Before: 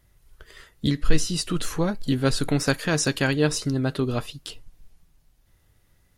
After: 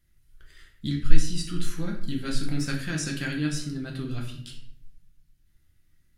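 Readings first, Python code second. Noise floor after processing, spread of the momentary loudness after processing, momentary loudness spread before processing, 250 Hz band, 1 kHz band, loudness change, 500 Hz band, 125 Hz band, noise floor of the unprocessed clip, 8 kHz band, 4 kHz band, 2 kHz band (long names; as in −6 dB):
−64 dBFS, 8 LU, 7 LU, −5.5 dB, −11.5 dB, −6.5 dB, −14.5 dB, −5.0 dB, −63 dBFS, −7.0 dB, −6.5 dB, −6.5 dB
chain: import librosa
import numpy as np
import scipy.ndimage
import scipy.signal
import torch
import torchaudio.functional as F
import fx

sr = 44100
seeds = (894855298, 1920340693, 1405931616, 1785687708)

y = fx.band_shelf(x, sr, hz=670.0, db=-11.0, octaves=1.7)
y = fx.room_shoebox(y, sr, seeds[0], volume_m3=120.0, walls='mixed', distance_m=0.83)
y = y * 10.0 ** (-9.0 / 20.0)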